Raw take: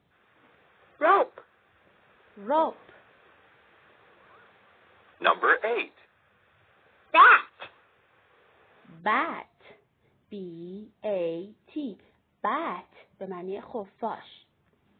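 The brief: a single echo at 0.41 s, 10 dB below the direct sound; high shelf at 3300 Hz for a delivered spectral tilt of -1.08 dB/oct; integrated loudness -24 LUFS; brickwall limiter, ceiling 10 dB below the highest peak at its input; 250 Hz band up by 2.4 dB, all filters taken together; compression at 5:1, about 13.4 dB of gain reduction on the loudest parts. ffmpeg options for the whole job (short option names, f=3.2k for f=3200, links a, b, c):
-af "equalizer=f=250:t=o:g=3.5,highshelf=f=3.3k:g=-9,acompressor=threshold=-27dB:ratio=5,alimiter=limit=-23.5dB:level=0:latency=1,aecho=1:1:410:0.316,volume=13dB"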